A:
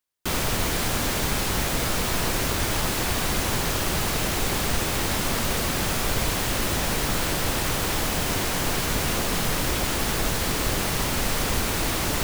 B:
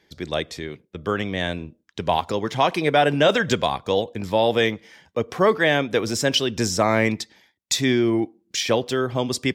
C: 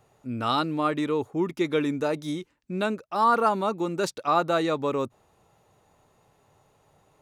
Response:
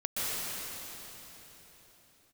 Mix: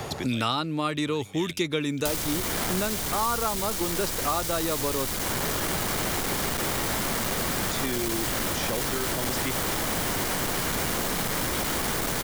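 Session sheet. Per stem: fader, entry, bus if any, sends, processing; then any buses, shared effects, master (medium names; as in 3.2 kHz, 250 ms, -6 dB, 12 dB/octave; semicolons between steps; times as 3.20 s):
-2.5 dB, 1.80 s, bus A, no send, band-stop 2.6 kHz, Q 14; saturation -24.5 dBFS, distortion -11 dB
-11.5 dB, 0.00 s, bus A, no send, auto duck -18 dB, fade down 0.25 s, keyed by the third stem
-2.0 dB, 0.00 s, no bus, no send, none
bus A: 0.0 dB, treble shelf 4.2 kHz +9 dB; peak limiter -22.5 dBFS, peak gain reduction 8.5 dB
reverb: none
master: three bands compressed up and down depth 100%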